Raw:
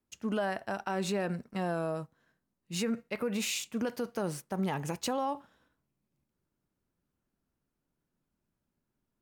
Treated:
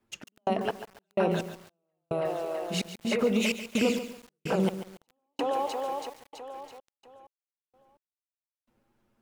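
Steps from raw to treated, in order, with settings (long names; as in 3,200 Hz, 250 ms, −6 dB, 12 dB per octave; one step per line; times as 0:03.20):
flanger swept by the level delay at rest 8.9 ms, full sweep at −29 dBFS
on a send: echo with a time of its own for lows and highs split 370 Hz, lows 87 ms, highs 329 ms, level −4 dB
on the sum: gate pattern "x.x..x...xxx.x" 64 BPM −60 dB
bass and treble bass −5 dB, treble −9 dB
in parallel at +3 dB: downward compressor 8 to 1, threshold −45 dBFS, peak gain reduction 15.5 dB
on the sum: feedback echo at a low word length 141 ms, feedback 35%, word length 8 bits, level −11 dB
level +7 dB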